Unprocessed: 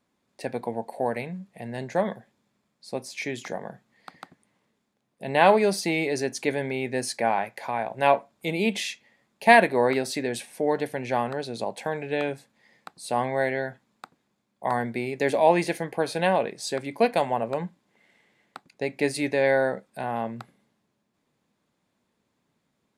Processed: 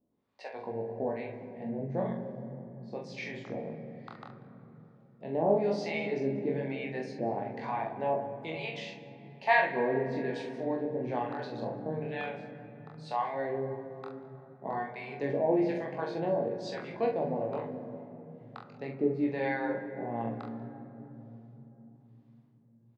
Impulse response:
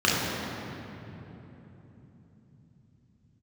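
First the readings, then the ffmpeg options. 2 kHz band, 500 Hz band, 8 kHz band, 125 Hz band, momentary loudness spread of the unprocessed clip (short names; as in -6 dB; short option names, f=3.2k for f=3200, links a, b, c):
-8.5 dB, -7.0 dB, under -20 dB, -3.5 dB, 15 LU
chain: -filter_complex "[0:a]lowpass=f=5.6k:w=0.5412,lowpass=f=5.6k:w=1.3066,highshelf=f=2.3k:g=-11,bandreject=f=50:t=h:w=6,bandreject=f=100:t=h:w=6,bandreject=f=150:t=h:w=6,bandreject=f=200:t=h:w=6,asplit=2[a][b];[b]acompressor=threshold=-33dB:ratio=6,volume=-1.5dB[c];[a][c]amix=inputs=2:normalize=0,flanger=delay=19:depth=7.3:speed=0.12,acrossover=split=640[d][e];[d]aeval=exprs='val(0)*(1-1/2+1/2*cos(2*PI*1.1*n/s))':c=same[f];[e]aeval=exprs='val(0)*(1-1/2-1/2*cos(2*PI*1.1*n/s))':c=same[g];[f][g]amix=inputs=2:normalize=0,asplit=2[h][i];[i]adelay=44,volume=-6dB[j];[h][j]amix=inputs=2:normalize=0,aecho=1:1:190:0.0708,asplit=2[k][l];[1:a]atrim=start_sample=2205,highshelf=f=4.3k:g=-10[m];[l][m]afir=irnorm=-1:irlink=0,volume=-24.5dB[n];[k][n]amix=inputs=2:normalize=0,volume=-2dB"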